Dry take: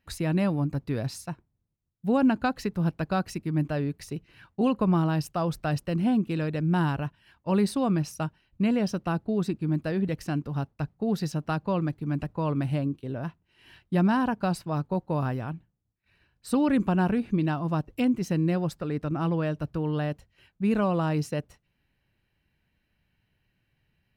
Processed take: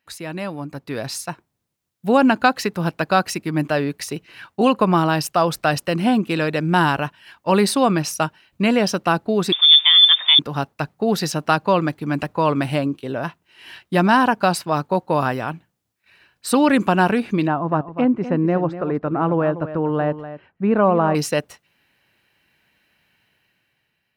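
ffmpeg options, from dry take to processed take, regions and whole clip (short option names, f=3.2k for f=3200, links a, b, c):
-filter_complex "[0:a]asettb=1/sr,asplit=3[a][b][c];[a]atrim=end=9.524[d];[b]atrim=start=9.52:end=10.39,asetpts=PTS-STARTPTS,afade=t=in:d=0.004:c=qsin,afade=t=out:st=0.866:d=0.004:c=qsin,aeval=exprs='val(0)+0.5*0.00668*sgn(val(0))':c=same,lowpass=f=3.1k:t=q:w=0.5098,lowpass=f=3.1k:t=q:w=0.6013,lowpass=f=3.1k:t=q:w=0.9,lowpass=f=3.1k:t=q:w=2.563,afreqshift=-3700[e];[c]atrim=start=10.386[f];[d][e]acrossfade=d=0.004:c1=hsin:c2=qsin[g];[g][f]acrossfade=d=0.004:c1=qsin:c2=hsin,asettb=1/sr,asplit=3[h][i][j];[h]atrim=end=17.474[k];[i]atrim=start=17.47:end=21.15,asetpts=PTS-STARTPTS,afade=t=in:d=0.004:c=qsin,afade=t=out:st=3.676:d=0.004:c=qsin,lowpass=1.2k,aecho=1:1:246:0.237,atrim=end_sample=162288[l];[j]atrim=start=21.146[m];[k][l]acrossfade=d=0.004:c1=hsin:c2=qsin[n];[n][m]acrossfade=d=0.004:c1=qsin:c2=hsin,dynaudnorm=f=230:g=9:m=12dB,highpass=f=630:p=1,volume=3.5dB"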